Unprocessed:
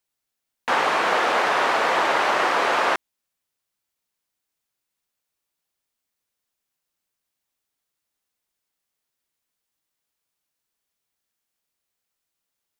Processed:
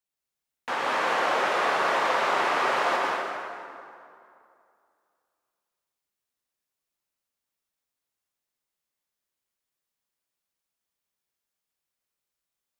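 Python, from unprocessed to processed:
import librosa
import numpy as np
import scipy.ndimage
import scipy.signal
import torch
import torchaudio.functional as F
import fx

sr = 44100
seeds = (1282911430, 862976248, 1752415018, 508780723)

y = fx.rev_plate(x, sr, seeds[0], rt60_s=2.5, hf_ratio=0.65, predelay_ms=110, drr_db=-2.5)
y = y * librosa.db_to_amplitude(-8.5)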